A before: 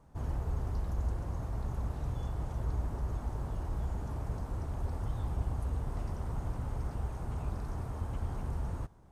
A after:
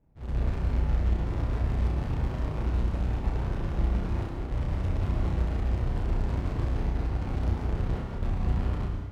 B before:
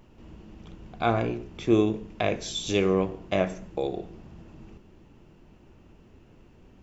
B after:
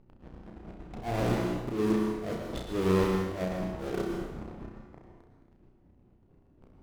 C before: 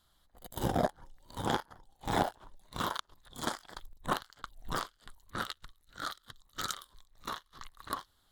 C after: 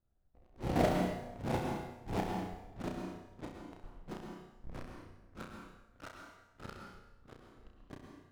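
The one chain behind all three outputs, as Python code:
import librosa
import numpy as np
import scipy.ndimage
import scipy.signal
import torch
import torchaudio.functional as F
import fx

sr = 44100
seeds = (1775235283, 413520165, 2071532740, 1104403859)

p1 = scipy.signal.medfilt(x, 41)
p2 = scipy.signal.sosfilt(scipy.signal.butter(2, 7800.0, 'lowpass', fs=sr, output='sos'), p1)
p3 = fx.high_shelf(p2, sr, hz=2700.0, db=-11.5)
p4 = fx.transient(p3, sr, attack_db=2, sustain_db=-10)
p5 = fx.fuzz(p4, sr, gain_db=48.0, gate_db=-45.0)
p6 = p4 + F.gain(torch.from_numpy(p5), -12.0).numpy()
p7 = fx.auto_swell(p6, sr, attack_ms=214.0)
p8 = p7 + fx.room_flutter(p7, sr, wall_m=5.6, rt60_s=0.42, dry=0)
p9 = fx.rev_plate(p8, sr, seeds[0], rt60_s=1.0, hf_ratio=0.85, predelay_ms=100, drr_db=2.0)
y = F.gain(torch.from_numpy(p9), -5.5).numpy()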